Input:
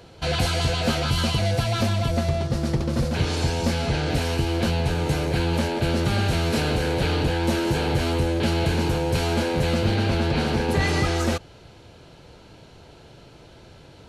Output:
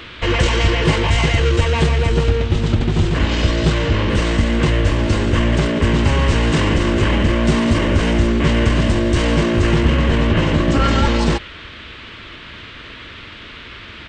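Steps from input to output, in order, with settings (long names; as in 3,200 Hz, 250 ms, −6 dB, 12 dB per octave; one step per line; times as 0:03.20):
pitch shifter −6.5 semitones
noise in a band 1,100–3,600 Hz −45 dBFS
level +7.5 dB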